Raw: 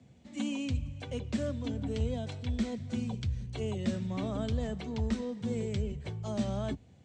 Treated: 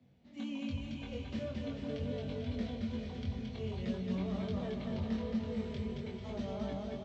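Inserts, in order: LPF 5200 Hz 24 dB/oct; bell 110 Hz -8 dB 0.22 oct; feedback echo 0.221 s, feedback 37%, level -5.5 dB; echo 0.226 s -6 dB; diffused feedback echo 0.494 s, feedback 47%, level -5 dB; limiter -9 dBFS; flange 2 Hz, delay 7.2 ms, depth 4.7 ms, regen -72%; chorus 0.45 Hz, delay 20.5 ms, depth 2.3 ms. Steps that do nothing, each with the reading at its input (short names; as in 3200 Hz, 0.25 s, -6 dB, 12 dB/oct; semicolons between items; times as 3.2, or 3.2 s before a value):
limiter -9 dBFS: input peak -18.0 dBFS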